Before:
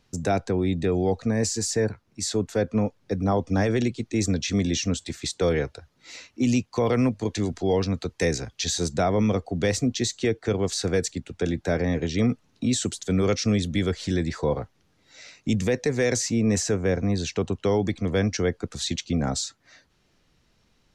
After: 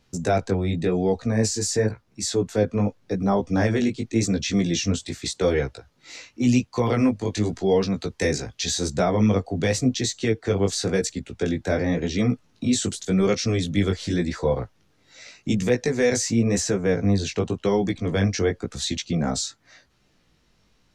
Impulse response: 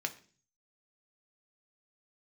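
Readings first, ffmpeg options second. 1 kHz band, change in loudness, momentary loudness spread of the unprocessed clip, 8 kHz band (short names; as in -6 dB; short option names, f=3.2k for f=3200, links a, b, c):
+1.5 dB, +1.5 dB, 6 LU, +1.5 dB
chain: -af "flanger=delay=15:depth=5.4:speed=0.9,volume=4.5dB"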